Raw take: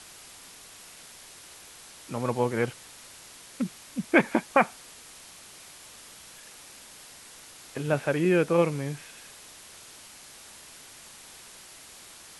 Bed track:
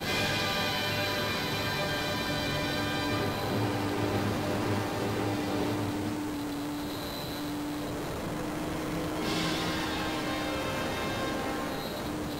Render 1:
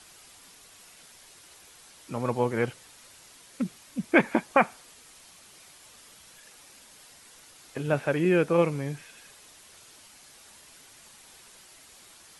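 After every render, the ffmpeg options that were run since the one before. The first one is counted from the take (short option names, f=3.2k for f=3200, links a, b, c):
-af "afftdn=nr=6:nf=-49"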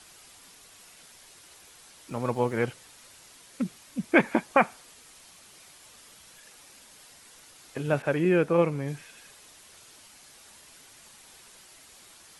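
-filter_complex "[0:a]asettb=1/sr,asplit=3[a][b][c];[a]atrim=end=2.104[d];[b]atrim=start=2.1:end=2.64,asetpts=PTS-STARTPTS,afade=t=in:d=0.004:c=qsin,afade=t=out:st=0.536:d=0.004:c=qsin,aeval=exprs='sgn(val(0))*max(abs(val(0))-0.00237,0)':c=same[e];[c]atrim=start=2.636[f];[d][e]acrossfade=d=0.004:c1=hsin:c2=qsin[g];[g][f]acrossfade=d=0.004:c1=qsin:c2=hsin,asettb=1/sr,asplit=3[h][i][j];[h]atrim=end=8.024[k];[i]atrim=start=8.02:end=8.88,asetpts=PTS-STARTPTS,afade=t=in:d=0.004:c=qsin,afade=t=out:st=0.856:d=0.004:c=qsin,adynamicequalizer=threshold=0.00708:dfrequency=2700:dqfactor=0.7:tfrequency=2700:tqfactor=0.7:attack=5:release=100:ratio=0.375:range=3.5:mode=cutabove:tftype=highshelf[l];[j]atrim=start=8.876[m];[k][l]acrossfade=d=0.004:c1=hsin:c2=qsin[n];[n][m]acrossfade=d=0.004:c1=qsin:c2=hsin"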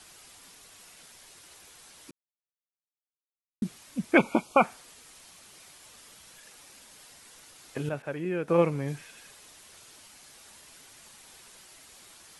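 -filter_complex "[0:a]asettb=1/sr,asplit=3[a][b][c];[a]atrim=end=4.174[d];[b]atrim=start=4.17:end=4.64,asetpts=PTS-STARTPTS,afade=t=in:d=0.004:c=qsin,afade=t=out:st=0.466:d=0.004:c=qsin,asuperstop=centerf=1800:order=20:qfactor=2.6[e];[c]atrim=start=4.636[f];[d][e]acrossfade=d=0.004:c1=hsin:c2=qsin[g];[g][f]acrossfade=d=0.004:c1=qsin:c2=hsin,asplit=5[h][i][j][k][l];[h]atrim=end=2.11,asetpts=PTS-STARTPTS,afade=t=out:st=2.106:d=0.004:c=hsin[m];[i]atrim=start=2.11:end=3.62,asetpts=PTS-STARTPTS,volume=0[n];[j]atrim=start=3.62:end=7.892,asetpts=PTS-STARTPTS,afade=t=in:d=0.004:c=hsin[o];[k]atrim=start=7.888:end=8.482,asetpts=PTS-STARTPTS,volume=-8.5dB[p];[l]atrim=start=8.478[q];[m][n][o]concat=n=3:v=0:a=1[r];[r][p]acrossfade=d=0.004:c1=hsin:c2=hsin[s];[s][q]acrossfade=d=0.004:c1=hsin:c2=hsin"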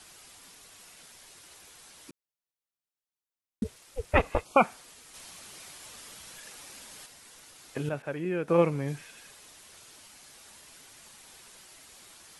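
-filter_complex "[0:a]asplit=3[a][b][c];[a]afade=t=out:st=3.63:d=0.02[d];[b]aeval=exprs='val(0)*sin(2*PI*260*n/s)':c=same,afade=t=in:st=3.63:d=0.02,afade=t=out:st=4.44:d=0.02[e];[c]afade=t=in:st=4.44:d=0.02[f];[d][e][f]amix=inputs=3:normalize=0,asplit=3[g][h][i];[g]atrim=end=5.142[j];[h]atrim=start=5.138:end=7.062,asetpts=PTS-STARTPTS,volume=5dB[k];[i]atrim=start=7.058[l];[j][k]acrossfade=d=0.004:c1=hsin:c2=hsin[m];[m][l]acrossfade=d=0.004:c1=hsin:c2=hsin"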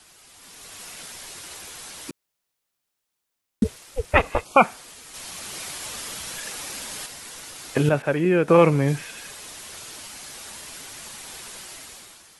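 -filter_complex "[0:a]acrossover=split=750|3200[a][b][c];[a]alimiter=limit=-19.5dB:level=0:latency=1[d];[d][b][c]amix=inputs=3:normalize=0,dynaudnorm=f=170:g=7:m=13dB"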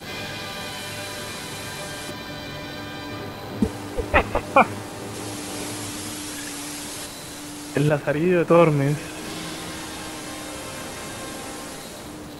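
-filter_complex "[1:a]volume=-3dB[a];[0:a][a]amix=inputs=2:normalize=0"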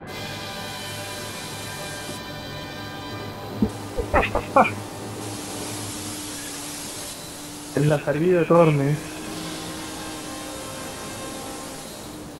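-filter_complex "[0:a]asplit=2[a][b];[b]adelay=19,volume=-10.5dB[c];[a][c]amix=inputs=2:normalize=0,acrossover=split=2000[d][e];[e]adelay=70[f];[d][f]amix=inputs=2:normalize=0"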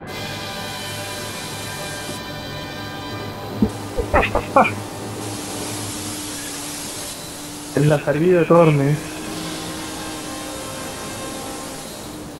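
-af "volume=4dB,alimiter=limit=-1dB:level=0:latency=1"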